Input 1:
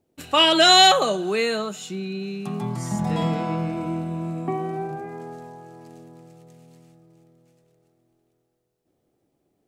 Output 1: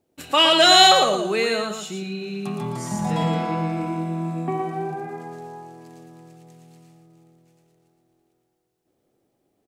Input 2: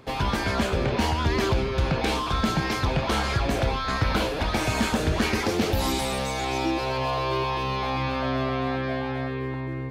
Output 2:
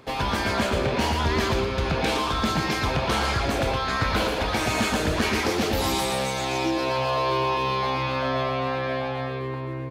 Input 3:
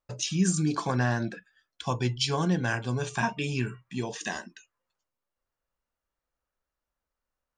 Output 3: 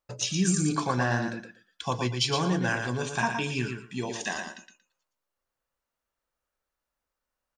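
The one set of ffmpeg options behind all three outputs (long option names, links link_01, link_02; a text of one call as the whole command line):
ffmpeg -i in.wav -filter_complex "[0:a]lowshelf=frequency=230:gain=-5,asplit=2[link_01][link_02];[link_02]asoftclip=type=tanh:threshold=-17dB,volume=-9.5dB[link_03];[link_01][link_03]amix=inputs=2:normalize=0,aecho=1:1:116|232|348:0.501|0.0902|0.0162,volume=-1dB" out.wav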